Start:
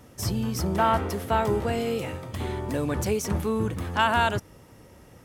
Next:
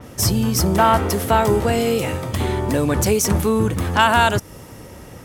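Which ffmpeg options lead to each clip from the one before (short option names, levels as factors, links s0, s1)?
-filter_complex "[0:a]asplit=2[s0][s1];[s1]acompressor=threshold=0.0224:ratio=6,volume=1.12[s2];[s0][s2]amix=inputs=2:normalize=0,adynamicequalizer=threshold=0.01:dfrequency=4800:dqfactor=0.7:tfrequency=4800:tqfactor=0.7:attack=5:release=100:ratio=0.375:range=3:mode=boostabove:tftype=highshelf,volume=1.88"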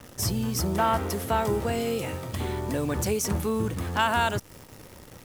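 -af "acrusher=bits=7:dc=4:mix=0:aa=0.000001,volume=0.355"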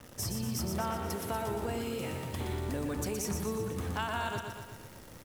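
-filter_complex "[0:a]acompressor=threshold=0.0398:ratio=3,asplit=2[s0][s1];[s1]aecho=0:1:120|240|360|480|600|720|840|960:0.531|0.308|0.179|0.104|0.0601|0.0348|0.0202|0.0117[s2];[s0][s2]amix=inputs=2:normalize=0,volume=0.562"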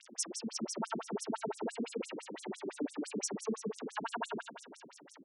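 -af "afftfilt=real='re*between(b*sr/1024,240*pow(7900/240,0.5+0.5*sin(2*PI*5.9*pts/sr))/1.41,240*pow(7900/240,0.5+0.5*sin(2*PI*5.9*pts/sr))*1.41)':imag='im*between(b*sr/1024,240*pow(7900/240,0.5+0.5*sin(2*PI*5.9*pts/sr))/1.41,240*pow(7900/240,0.5+0.5*sin(2*PI*5.9*pts/sr))*1.41)':win_size=1024:overlap=0.75,volume=1.88"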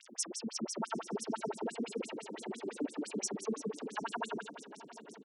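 -filter_complex "[0:a]asplit=2[s0][s1];[s1]adelay=756,lowpass=f=1300:p=1,volume=0.2,asplit=2[s2][s3];[s3]adelay=756,lowpass=f=1300:p=1,volume=0.47,asplit=2[s4][s5];[s5]adelay=756,lowpass=f=1300:p=1,volume=0.47,asplit=2[s6][s7];[s7]adelay=756,lowpass=f=1300:p=1,volume=0.47[s8];[s0][s2][s4][s6][s8]amix=inputs=5:normalize=0"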